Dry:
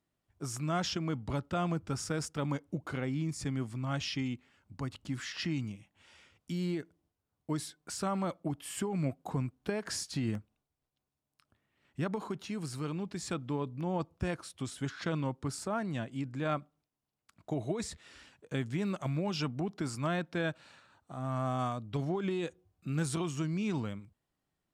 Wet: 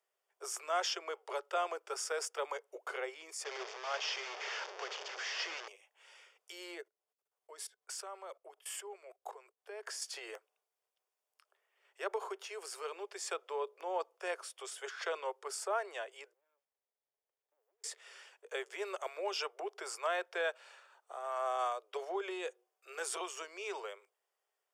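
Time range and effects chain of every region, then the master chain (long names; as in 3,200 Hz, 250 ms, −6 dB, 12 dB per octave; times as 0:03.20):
0:03.44–0:05.68: linear delta modulator 32 kbit/s, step −34 dBFS + one half of a high-frequency compander decoder only
0:06.80–0:10.02: high-pass filter 81 Hz + output level in coarse steps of 22 dB
0:16.33–0:17.84: inverse Chebyshev band-stop filter 300–9,700 Hz, stop band 50 dB + spectral tilt +2 dB per octave + windowed peak hold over 33 samples
whole clip: Butterworth high-pass 390 Hz 96 dB per octave; notch filter 4,000 Hz, Q 6.1; level +1 dB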